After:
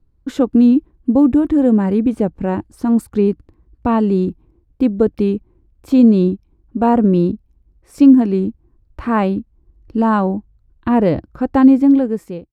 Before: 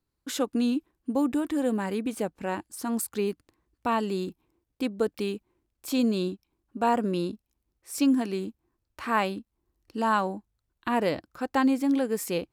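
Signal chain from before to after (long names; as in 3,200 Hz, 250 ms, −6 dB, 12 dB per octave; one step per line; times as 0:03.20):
fade-out on the ending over 0.68 s
spectral tilt −4.5 dB per octave
level +6 dB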